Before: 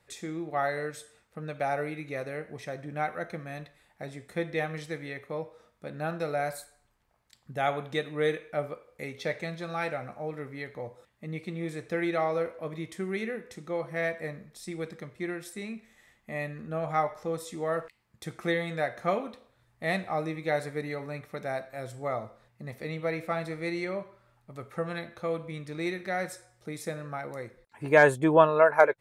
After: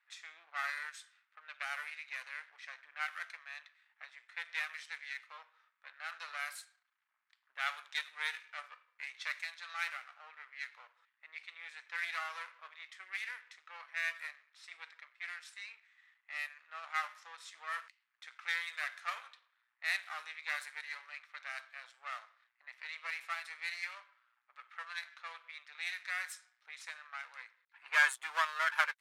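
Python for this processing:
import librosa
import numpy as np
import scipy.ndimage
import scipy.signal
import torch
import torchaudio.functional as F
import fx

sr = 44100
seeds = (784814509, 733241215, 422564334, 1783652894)

y = np.where(x < 0.0, 10.0 ** (-12.0 / 20.0) * x, x)
y = scipy.signal.sosfilt(scipy.signal.butter(4, 1300.0, 'highpass', fs=sr, output='sos'), y)
y = fx.env_lowpass(y, sr, base_hz=2100.0, full_db=-37.5)
y = F.gain(torch.from_numpy(y), 1.0).numpy()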